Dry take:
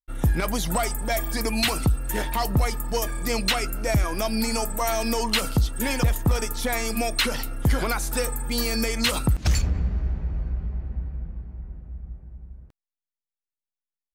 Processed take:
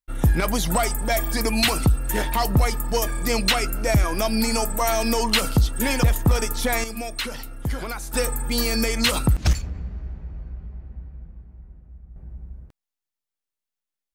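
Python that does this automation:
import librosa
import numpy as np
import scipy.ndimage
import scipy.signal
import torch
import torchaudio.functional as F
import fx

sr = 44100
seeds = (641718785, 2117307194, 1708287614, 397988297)

y = fx.gain(x, sr, db=fx.steps((0.0, 3.0), (6.84, -5.5), (8.14, 2.5), (9.53, -7.0), (12.16, 3.5)))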